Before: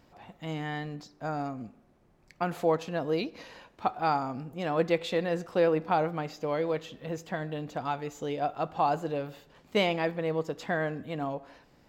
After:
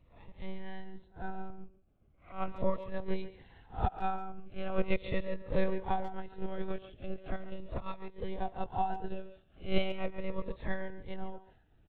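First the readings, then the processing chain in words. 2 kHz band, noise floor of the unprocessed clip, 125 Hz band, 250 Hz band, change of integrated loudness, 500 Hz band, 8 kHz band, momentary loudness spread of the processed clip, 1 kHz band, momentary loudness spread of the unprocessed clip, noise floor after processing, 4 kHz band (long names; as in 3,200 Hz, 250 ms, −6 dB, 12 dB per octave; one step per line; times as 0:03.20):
−8.5 dB, −63 dBFS, −5.0 dB, −6.0 dB, −7.5 dB, −9.0 dB, can't be measured, 15 LU, −7.0 dB, 11 LU, −65 dBFS, −8.5 dB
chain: peak hold with a rise ahead of every peak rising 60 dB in 0.35 s
transient designer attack +7 dB, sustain −5 dB
one-pitch LPC vocoder at 8 kHz 190 Hz
low-shelf EQ 120 Hz +9.5 dB
far-end echo of a speakerphone 140 ms, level −12 dB
phaser whose notches keep moving one way falling 0.39 Hz
level −9 dB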